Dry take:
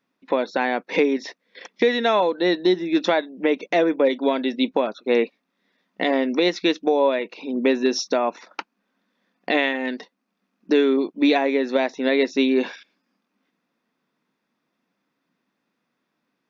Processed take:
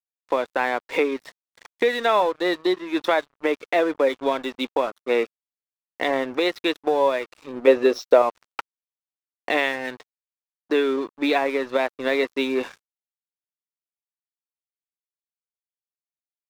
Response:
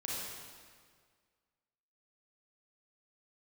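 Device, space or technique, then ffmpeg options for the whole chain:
pocket radio on a weak battery: -filter_complex "[0:a]asettb=1/sr,asplit=3[a][b][c];[a]atrim=end=7.674[d];[b]atrim=start=7.67:end=8.22,asetpts=PTS-STARTPTS,afade=t=in:d=0.004:c=qsin,afade=t=out:st=0.546:d=0.004:c=qsin,equalizer=f=510:t=o:w=0.81:g=11.5[e];[c]atrim=start=8.216[f];[d][e]acrossfade=d=0.004:c1=hsin:c2=qsin[g];[g][f]acrossfade=d=0.004:c1=qsin:c2=hsin,highpass=350,lowpass=4.1k,aeval=exprs='sgn(val(0))*max(abs(val(0))-0.0119,0)':c=same,equalizer=f=1.2k:t=o:w=0.59:g=4.5"

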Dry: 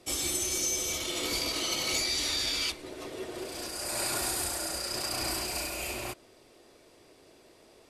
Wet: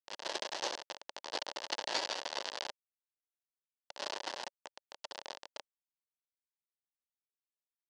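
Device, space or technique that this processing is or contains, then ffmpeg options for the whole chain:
hand-held game console: -filter_complex "[0:a]asettb=1/sr,asplit=3[a][b][c];[a]atrim=end=1.914[d];[b]atrim=start=1.91:end=2.43,asetpts=PTS-STARTPTS,afade=t=in:d=0.004:c=qsin,afade=t=out:st=0.516:d=0.004:c=qsin,bandreject=f=50:t=h:w=6,bandreject=f=100:t=h:w=6,bandreject=f=150:t=h:w=6,bandreject=f=200:t=h:w=6,bandreject=f=250:t=h:w=6,bandreject=f=300:t=h:w=6,bandreject=f=350:t=h:w=6[e];[c]atrim=start=2.426[f];[d][e]acrossfade=d=0.004:c1=hsin:c2=qsin[g];[g][f]acrossfade=d=0.004:c1=qsin:c2=hsin,acrusher=bits=3:mix=0:aa=0.000001,highpass=450,equalizer=f=570:t=q:w=4:g=6,equalizer=f=890:t=q:w=4:g=5,equalizer=f=1.3k:t=q:w=4:g=-7,equalizer=f=2.3k:t=q:w=4:g=-10,equalizer=f=3.7k:t=q:w=4:g=-4,lowpass=f=4.7k:w=0.5412,lowpass=f=4.7k:w=1.3066,volume=5dB"

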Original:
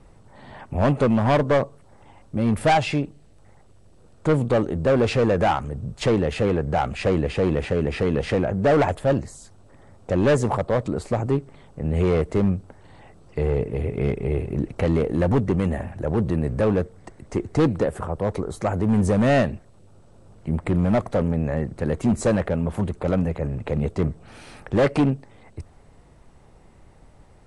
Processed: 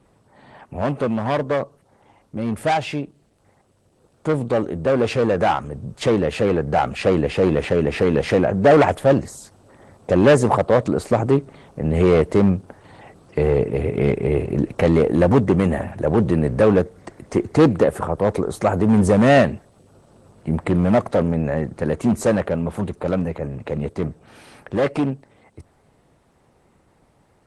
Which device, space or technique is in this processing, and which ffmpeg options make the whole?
video call: -af "highpass=f=160:p=1,dynaudnorm=f=750:g=17:m=13dB,volume=-1dB" -ar 48000 -c:a libopus -b:a 20k

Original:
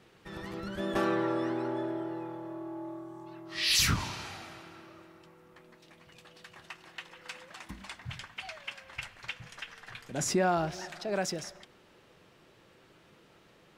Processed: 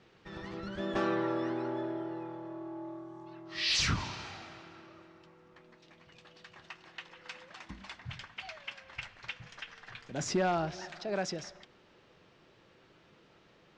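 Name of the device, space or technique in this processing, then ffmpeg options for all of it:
synthesiser wavefolder: -af "aeval=exprs='0.1*(abs(mod(val(0)/0.1+3,4)-2)-1)':c=same,lowpass=f=6.3k:w=0.5412,lowpass=f=6.3k:w=1.3066,volume=-2dB"

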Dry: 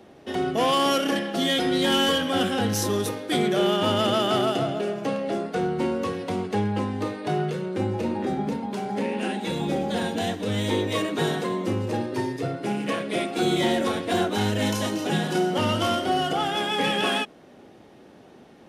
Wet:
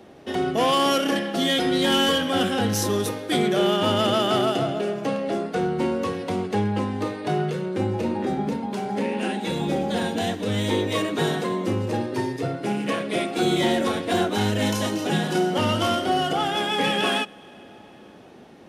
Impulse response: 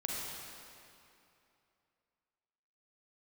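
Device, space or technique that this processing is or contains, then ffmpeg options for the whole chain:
compressed reverb return: -filter_complex "[0:a]asplit=2[a][b];[1:a]atrim=start_sample=2205[c];[b][c]afir=irnorm=-1:irlink=0,acompressor=threshold=-31dB:ratio=6,volume=-14.5dB[d];[a][d]amix=inputs=2:normalize=0,volume=1dB"

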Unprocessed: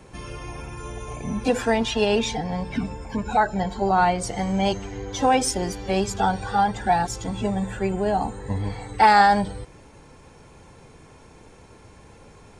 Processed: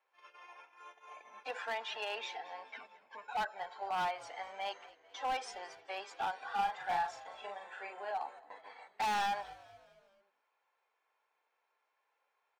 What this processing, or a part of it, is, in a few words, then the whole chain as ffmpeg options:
walkie-talkie: -filter_complex "[0:a]highpass=560,lowpass=2.9k,highpass=770,asoftclip=type=hard:threshold=-22dB,agate=range=-15dB:threshold=-43dB:ratio=16:detection=peak,asettb=1/sr,asplit=3[a][b][c];[a]atrim=end=6.474[d];[b]atrim=start=6.47:end=8.11,asetpts=PTS-STARTPTS,afade=t=in:d=0.004:c=qsin,afade=t=out:st=1.636:d=0.004:c=qsin,asplit=2[e][f];[f]adelay=40,volume=-4dB[g];[e][g]amix=inputs=2:normalize=0,atrim=end_sample=72324[h];[c]atrim=start=8.106[i];[d][h]acrossfade=d=0.004:c1=hsin:c2=qsin[j];[j][i]acrossfade=d=0.004:c1=qsin:c2=hsin,asplit=5[k][l][m][n][o];[l]adelay=219,afreqshift=-54,volume=-20dB[p];[m]adelay=438,afreqshift=-108,volume=-25.8dB[q];[n]adelay=657,afreqshift=-162,volume=-31.7dB[r];[o]adelay=876,afreqshift=-216,volume=-37.5dB[s];[k][p][q][r][s]amix=inputs=5:normalize=0,volume=-9dB"

